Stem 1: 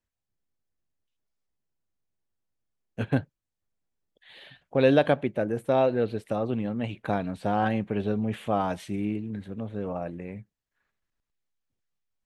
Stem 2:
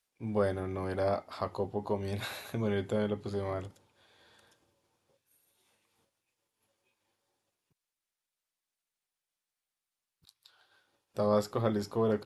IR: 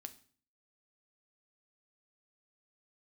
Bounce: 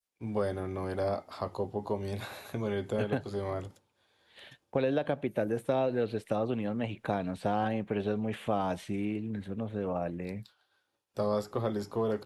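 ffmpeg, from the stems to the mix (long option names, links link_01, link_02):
-filter_complex "[0:a]alimiter=limit=-12.5dB:level=0:latency=1:release=267,agate=range=-33dB:threshold=-45dB:ratio=3:detection=peak,volume=0.5dB[link_01];[1:a]adynamicequalizer=threshold=0.00447:dfrequency=2000:dqfactor=0.75:tfrequency=2000:tqfactor=0.75:attack=5:release=100:ratio=0.375:range=1.5:mode=cutabove:tftype=bell,volume=1dB[link_02];[link_01][link_02]amix=inputs=2:normalize=0,agate=range=-7dB:threshold=-53dB:ratio=16:detection=peak,acrossover=split=370|1200|2400[link_03][link_04][link_05][link_06];[link_03]acompressor=threshold=-33dB:ratio=4[link_07];[link_04]acompressor=threshold=-29dB:ratio=4[link_08];[link_05]acompressor=threshold=-47dB:ratio=4[link_09];[link_06]acompressor=threshold=-49dB:ratio=4[link_10];[link_07][link_08][link_09][link_10]amix=inputs=4:normalize=0"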